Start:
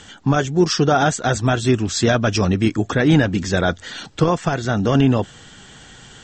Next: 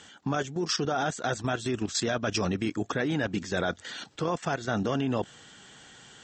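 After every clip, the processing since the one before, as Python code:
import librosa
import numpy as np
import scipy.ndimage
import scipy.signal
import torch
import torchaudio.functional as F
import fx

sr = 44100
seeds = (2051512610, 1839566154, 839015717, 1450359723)

y = fx.highpass(x, sr, hz=220.0, slope=6)
y = fx.level_steps(y, sr, step_db=12)
y = y * librosa.db_to_amplitude(-3.5)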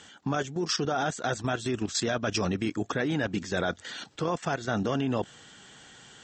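y = x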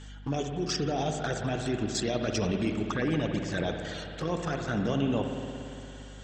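y = fx.env_flanger(x, sr, rest_ms=7.5, full_db=-23.5)
y = fx.add_hum(y, sr, base_hz=50, snr_db=13)
y = fx.rev_spring(y, sr, rt60_s=2.8, pass_ms=(57,), chirp_ms=35, drr_db=3.5)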